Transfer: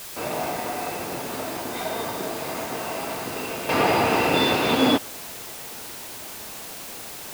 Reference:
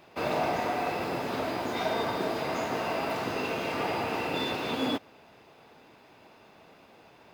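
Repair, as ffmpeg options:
ffmpeg -i in.wav -af "afwtdn=0.013,asetnsamples=nb_out_samples=441:pad=0,asendcmd='3.69 volume volume -10.5dB',volume=0dB" out.wav

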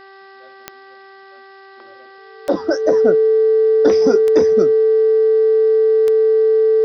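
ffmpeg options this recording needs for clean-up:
ffmpeg -i in.wav -af "adeclick=threshold=4,bandreject=frequency=388.9:width_type=h:width=4,bandreject=frequency=777.8:width_type=h:width=4,bandreject=frequency=1166.7:width_type=h:width=4,bandreject=frequency=1555.6:width_type=h:width=4,bandreject=frequency=1944.5:width_type=h:width=4,bandreject=frequency=440:width=30,agate=range=-21dB:threshold=-34dB" out.wav

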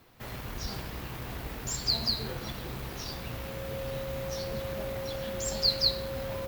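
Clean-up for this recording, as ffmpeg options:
ffmpeg -i in.wav -af "adeclick=threshold=4,bandreject=frequency=540:width=30" out.wav

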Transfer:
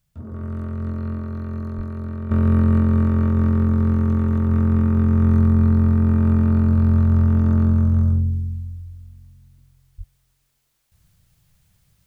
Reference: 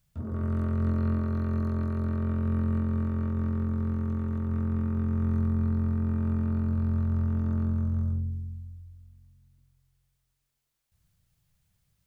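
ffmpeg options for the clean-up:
ffmpeg -i in.wav -filter_complex "[0:a]asplit=3[link_01][link_02][link_03];[link_01]afade=type=out:start_time=1.76:duration=0.02[link_04];[link_02]highpass=frequency=140:width=0.5412,highpass=frequency=140:width=1.3066,afade=type=in:start_time=1.76:duration=0.02,afade=type=out:start_time=1.88:duration=0.02[link_05];[link_03]afade=type=in:start_time=1.88:duration=0.02[link_06];[link_04][link_05][link_06]amix=inputs=3:normalize=0,asplit=3[link_07][link_08][link_09];[link_07]afade=type=out:start_time=9.97:duration=0.02[link_10];[link_08]highpass=frequency=140:width=0.5412,highpass=frequency=140:width=1.3066,afade=type=in:start_time=9.97:duration=0.02,afade=type=out:start_time=10.09:duration=0.02[link_11];[link_09]afade=type=in:start_time=10.09:duration=0.02[link_12];[link_10][link_11][link_12]amix=inputs=3:normalize=0,asetnsamples=nb_out_samples=441:pad=0,asendcmd='2.31 volume volume -11dB',volume=0dB" out.wav

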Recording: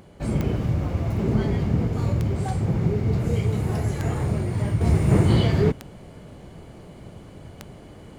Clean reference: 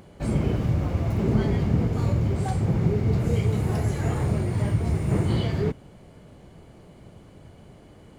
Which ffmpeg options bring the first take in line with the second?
ffmpeg -i in.wav -af "adeclick=threshold=4,asetnsamples=nb_out_samples=441:pad=0,asendcmd='4.81 volume volume -5.5dB',volume=0dB" out.wav

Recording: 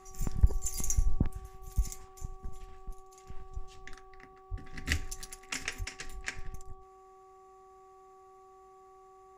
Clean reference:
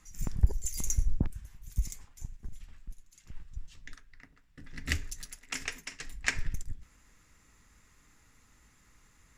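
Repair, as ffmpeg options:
ffmpeg -i in.wav -filter_complex "[0:a]bandreject=frequency=379.9:width_type=h:width=4,bandreject=frequency=759.8:width_type=h:width=4,bandreject=frequency=1139.7:width_type=h:width=4,asplit=3[link_01][link_02][link_03];[link_01]afade=type=out:start_time=4.5:duration=0.02[link_04];[link_02]highpass=frequency=140:width=0.5412,highpass=frequency=140:width=1.3066,afade=type=in:start_time=4.5:duration=0.02,afade=type=out:start_time=4.62:duration=0.02[link_05];[link_03]afade=type=in:start_time=4.62:duration=0.02[link_06];[link_04][link_05][link_06]amix=inputs=3:normalize=0,asplit=3[link_07][link_08][link_09];[link_07]afade=type=out:start_time=5.78:duration=0.02[link_10];[link_08]highpass=frequency=140:width=0.5412,highpass=frequency=140:width=1.3066,afade=type=in:start_time=5.78:duration=0.02,afade=type=out:start_time=5.9:duration=0.02[link_11];[link_09]afade=type=in:start_time=5.9:duration=0.02[link_12];[link_10][link_11][link_12]amix=inputs=3:normalize=0,asetnsamples=nb_out_samples=441:pad=0,asendcmd='6.24 volume volume 8.5dB',volume=0dB" out.wav

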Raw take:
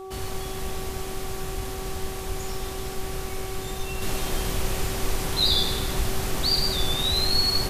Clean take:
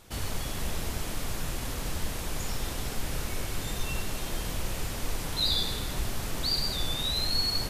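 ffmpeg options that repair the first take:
ffmpeg -i in.wav -filter_complex "[0:a]bandreject=frequency=380.9:width_type=h:width=4,bandreject=frequency=761.8:width_type=h:width=4,bandreject=frequency=1142.7:width_type=h:width=4,asplit=3[link_01][link_02][link_03];[link_01]afade=type=out:start_time=1.56:duration=0.02[link_04];[link_02]highpass=frequency=140:width=0.5412,highpass=frequency=140:width=1.3066,afade=type=in:start_time=1.56:duration=0.02,afade=type=out:start_time=1.68:duration=0.02[link_05];[link_03]afade=type=in:start_time=1.68:duration=0.02[link_06];[link_04][link_05][link_06]amix=inputs=3:normalize=0,asplit=3[link_07][link_08][link_09];[link_07]afade=type=out:start_time=2.28:duration=0.02[link_10];[link_08]highpass=frequency=140:width=0.5412,highpass=frequency=140:width=1.3066,afade=type=in:start_time=2.28:duration=0.02,afade=type=out:start_time=2.4:duration=0.02[link_11];[link_09]afade=type=in:start_time=2.4:duration=0.02[link_12];[link_10][link_11][link_12]amix=inputs=3:normalize=0,asplit=3[link_13][link_14][link_15];[link_13]afade=type=out:start_time=7.09:duration=0.02[link_16];[link_14]highpass=frequency=140:width=0.5412,highpass=frequency=140:width=1.3066,afade=type=in:start_time=7.09:duration=0.02,afade=type=out:start_time=7.21:duration=0.02[link_17];[link_15]afade=type=in:start_time=7.21:duration=0.02[link_18];[link_16][link_17][link_18]amix=inputs=3:normalize=0,asetnsamples=nb_out_samples=441:pad=0,asendcmd='4.02 volume volume -5.5dB',volume=0dB" out.wav

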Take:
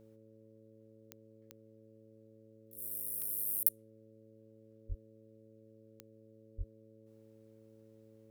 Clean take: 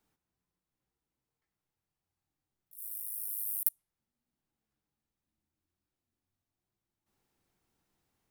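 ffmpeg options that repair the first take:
ffmpeg -i in.wav -filter_complex "[0:a]adeclick=threshold=4,bandreject=frequency=110:width_type=h:width=4,bandreject=frequency=220:width_type=h:width=4,bandreject=frequency=330:width_type=h:width=4,bandreject=frequency=440:width_type=h:width=4,bandreject=frequency=550:width_type=h:width=4,asplit=3[link_01][link_02][link_03];[link_01]afade=type=out:start_time=4.88:duration=0.02[link_04];[link_02]highpass=frequency=140:width=0.5412,highpass=frequency=140:width=1.3066,afade=type=in:start_time=4.88:duration=0.02,afade=type=out:start_time=5:duration=0.02[link_05];[link_03]afade=type=in:start_time=5:duration=0.02[link_06];[link_04][link_05][link_06]amix=inputs=3:normalize=0,asplit=3[link_07][link_08][link_09];[link_07]afade=type=out:start_time=6.57:duration=0.02[link_10];[link_08]highpass=frequency=140:width=0.5412,highpass=frequency=140:width=1.3066,afade=type=in:start_time=6.57:duration=0.02,afade=type=out:start_time=6.69:duration=0.02[link_11];[link_09]afade=type=in:start_time=6.69:duration=0.02[link_12];[link_10][link_11][link_12]amix=inputs=3:normalize=0" out.wav

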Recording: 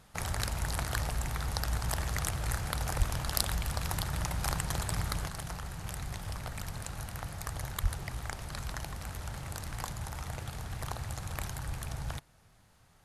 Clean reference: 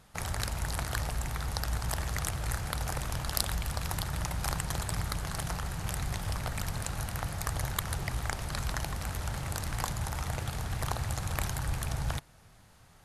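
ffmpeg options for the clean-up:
ffmpeg -i in.wav -filter_complex "[0:a]asplit=3[link_01][link_02][link_03];[link_01]afade=type=out:start_time=2.98:duration=0.02[link_04];[link_02]highpass=frequency=140:width=0.5412,highpass=frequency=140:width=1.3066,afade=type=in:start_time=2.98:duration=0.02,afade=type=out:start_time=3.1:duration=0.02[link_05];[link_03]afade=type=in:start_time=3.1:duration=0.02[link_06];[link_04][link_05][link_06]amix=inputs=3:normalize=0,asplit=3[link_07][link_08][link_09];[link_07]afade=type=out:start_time=7.82:duration=0.02[link_10];[link_08]highpass=frequency=140:width=0.5412,highpass=frequency=140:width=1.3066,afade=type=in:start_time=7.82:duration=0.02,afade=type=out:start_time=7.94:duration=0.02[link_11];[link_09]afade=type=in:start_time=7.94:duration=0.02[link_12];[link_10][link_11][link_12]amix=inputs=3:normalize=0,asetnsamples=nb_out_samples=441:pad=0,asendcmd='5.28 volume volume 5dB',volume=0dB" out.wav

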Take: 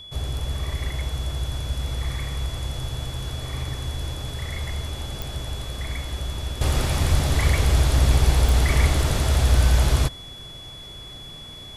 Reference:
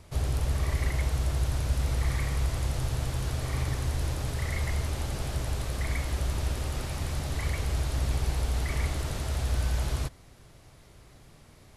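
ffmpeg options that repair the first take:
ffmpeg -i in.wav -filter_complex "[0:a]adeclick=threshold=4,bandreject=frequency=3400:width=30,asplit=3[link_01][link_02][link_03];[link_01]afade=type=out:start_time=7.1:duration=0.02[link_04];[link_02]highpass=frequency=140:width=0.5412,highpass=frequency=140:width=1.3066,afade=type=in:start_time=7.1:duration=0.02,afade=type=out:start_time=7.22:duration=0.02[link_05];[link_03]afade=type=in:start_time=7.22:duration=0.02[link_06];[link_04][link_05][link_06]amix=inputs=3:normalize=0,asetnsamples=nb_out_samples=441:pad=0,asendcmd='6.61 volume volume -10.5dB',volume=0dB" out.wav

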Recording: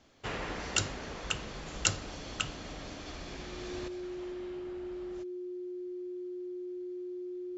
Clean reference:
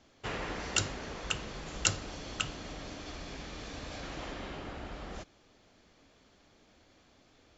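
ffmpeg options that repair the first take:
ffmpeg -i in.wav -af "bandreject=frequency=360:width=30,asetnsamples=nb_out_samples=441:pad=0,asendcmd='3.88 volume volume 10dB',volume=0dB" out.wav

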